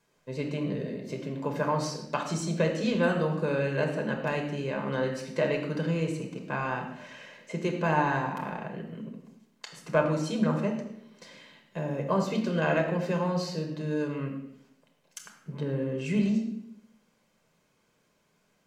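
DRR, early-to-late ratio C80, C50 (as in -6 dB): 1.0 dB, 8.0 dB, 6.5 dB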